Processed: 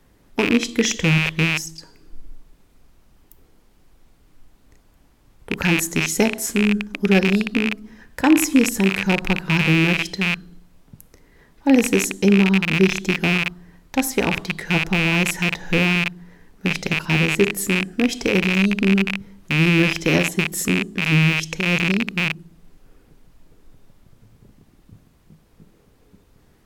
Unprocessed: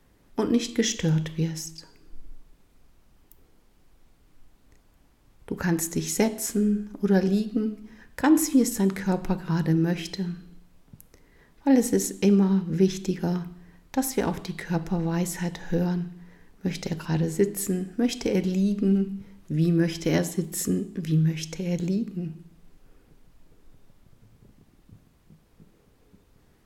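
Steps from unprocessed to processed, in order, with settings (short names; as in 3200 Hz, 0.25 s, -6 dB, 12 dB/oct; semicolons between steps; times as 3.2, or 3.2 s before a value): rattling part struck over -35 dBFS, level -13 dBFS; gain +4.5 dB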